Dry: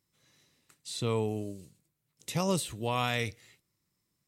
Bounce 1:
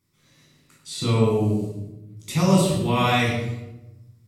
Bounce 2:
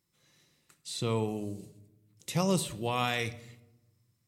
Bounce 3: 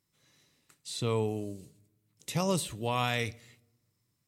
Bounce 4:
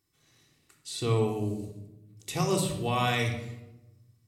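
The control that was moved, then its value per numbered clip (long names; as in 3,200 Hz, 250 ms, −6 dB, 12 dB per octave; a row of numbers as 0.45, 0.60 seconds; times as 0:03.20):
rectangular room, microphone at: 12, 0.87, 0.3, 3.5 metres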